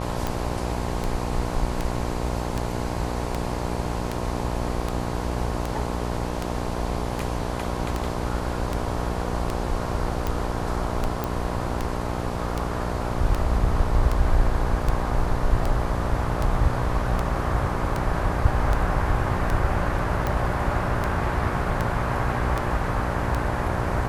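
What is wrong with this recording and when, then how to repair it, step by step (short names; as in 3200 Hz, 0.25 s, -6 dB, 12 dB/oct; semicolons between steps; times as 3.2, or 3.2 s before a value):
buzz 60 Hz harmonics 18 -29 dBFS
tick 78 rpm -12 dBFS
11.24 pop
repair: de-click; de-hum 60 Hz, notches 18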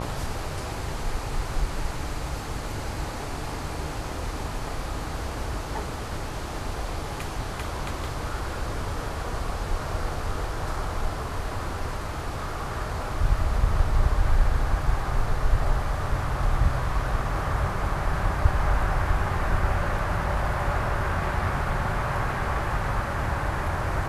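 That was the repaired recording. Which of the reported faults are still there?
none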